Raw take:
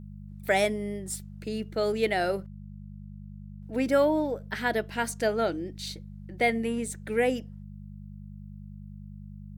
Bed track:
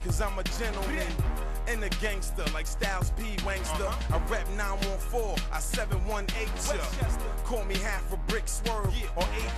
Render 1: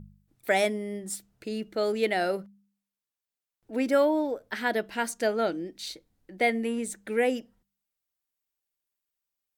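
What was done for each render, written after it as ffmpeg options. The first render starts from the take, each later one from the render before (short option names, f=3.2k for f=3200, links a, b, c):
-af "bandreject=f=50:t=h:w=4,bandreject=f=100:t=h:w=4,bandreject=f=150:t=h:w=4,bandreject=f=200:t=h:w=4"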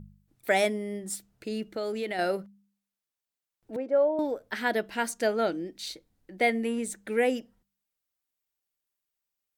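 -filter_complex "[0:a]asettb=1/sr,asplit=3[a][b][c];[a]atrim=end=1.634[d];[b]atrim=start=1.63:end=2.19,asetpts=PTS-STARTPTS,afade=t=in:d=0.004:c=qsin,afade=t=out:st=0.556:d=0.004:c=qsin,acompressor=threshold=-29dB:ratio=4:attack=3.2:release=140:knee=1:detection=peak[e];[c]atrim=start=2.186[f];[d][e]acrossfade=d=0.004:c1=hsin:c2=qsin[g];[g][f]acrossfade=d=0.004:c1=qsin:c2=hsin,asettb=1/sr,asplit=3[h][i][j];[h]atrim=end=3.764[k];[i]atrim=start=3.76:end=4.19,asetpts=PTS-STARTPTS,afade=t=in:d=0.004:c=qsin,afade=t=out:st=0.426:d=0.004:c=qsin,bandpass=f=580:t=q:w=1.9[l];[j]atrim=start=4.186[m];[k][l]acrossfade=d=0.004:c1=hsin:c2=qsin[n];[n][m]acrossfade=d=0.004:c1=qsin:c2=hsin"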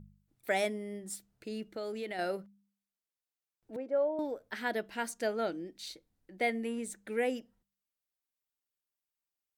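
-af "volume=-6.5dB"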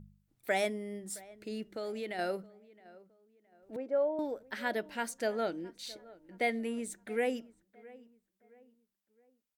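-filter_complex "[0:a]asplit=2[a][b];[b]adelay=667,lowpass=f=1.9k:p=1,volume=-20.5dB,asplit=2[c][d];[d]adelay=667,lowpass=f=1.9k:p=1,volume=0.4,asplit=2[e][f];[f]adelay=667,lowpass=f=1.9k:p=1,volume=0.4[g];[a][c][e][g]amix=inputs=4:normalize=0"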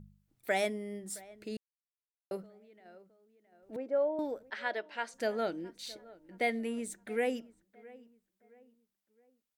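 -filter_complex "[0:a]asettb=1/sr,asplit=3[a][b][c];[a]atrim=end=4.504[d];[b]atrim=start=4.5:end=5.14,asetpts=PTS-STARTPTS,afade=t=in:d=0.004:c=qsin,afade=t=out:st=0.636:d=0.004:c=qsin,highpass=480,lowpass=4.6k[e];[c]atrim=start=5.136[f];[d][e]acrossfade=d=0.004:c1=hsin:c2=qsin[g];[g][f]acrossfade=d=0.004:c1=qsin:c2=hsin,asplit=3[h][i][j];[h]atrim=end=1.57,asetpts=PTS-STARTPTS,afade=t=out:st=1.566:d=0.004:c=hsin[k];[i]atrim=start=1.57:end=2.31,asetpts=PTS-STARTPTS,volume=0[l];[j]atrim=start=2.31,asetpts=PTS-STARTPTS,afade=t=in:d=0.004:c=hsin[m];[k][l][m]concat=n=3:v=0:a=1"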